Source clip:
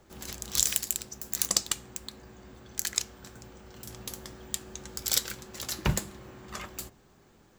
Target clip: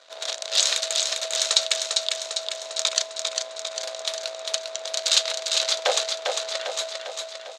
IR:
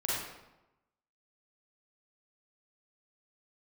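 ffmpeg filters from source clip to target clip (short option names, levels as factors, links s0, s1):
-filter_complex "[0:a]asplit=2[s0][s1];[s1]acompressor=threshold=0.00562:ratio=6,volume=1[s2];[s0][s2]amix=inputs=2:normalize=0,asoftclip=type=tanh:threshold=0.15,crystalizer=i=3.5:c=0,acrusher=bits=5:dc=4:mix=0:aa=0.000001,aeval=exprs='val(0)*sin(2*PI*650*n/s)':c=same,aeval=exprs='val(0)+0.00158*(sin(2*PI*50*n/s)+sin(2*PI*2*50*n/s)/2+sin(2*PI*3*50*n/s)/3+sin(2*PI*4*50*n/s)/4+sin(2*PI*5*50*n/s)/5)':c=same,highpass=f=490:w=0.5412,highpass=f=490:w=1.3066,equalizer=f=530:t=q:w=4:g=6,equalizer=f=870:t=q:w=4:g=-4,equalizer=f=1400:t=q:w=4:g=3,equalizer=f=3800:t=q:w=4:g=9,equalizer=f=5400:t=q:w=4:g=-4,lowpass=f=6000:w=0.5412,lowpass=f=6000:w=1.3066,asplit=2[s3][s4];[s4]aecho=0:1:400|800|1200|1600|2000|2400|2800|3200:0.596|0.345|0.2|0.116|0.0674|0.0391|0.0227|0.0132[s5];[s3][s5]amix=inputs=2:normalize=0,volume=1.68"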